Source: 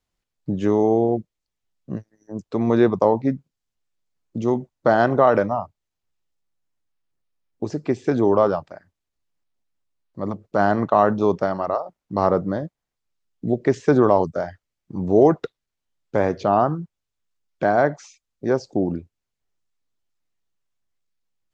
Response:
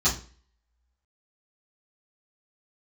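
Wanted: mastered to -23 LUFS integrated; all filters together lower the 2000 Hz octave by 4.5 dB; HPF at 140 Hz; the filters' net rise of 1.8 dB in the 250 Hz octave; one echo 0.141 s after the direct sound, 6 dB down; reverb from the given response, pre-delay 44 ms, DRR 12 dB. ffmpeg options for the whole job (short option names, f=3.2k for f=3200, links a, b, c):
-filter_complex "[0:a]highpass=140,equalizer=f=250:t=o:g=3,equalizer=f=2k:t=o:g=-7,aecho=1:1:141:0.501,asplit=2[a][b];[1:a]atrim=start_sample=2205,adelay=44[c];[b][c]afir=irnorm=-1:irlink=0,volume=-24.5dB[d];[a][d]amix=inputs=2:normalize=0,volume=-3.5dB"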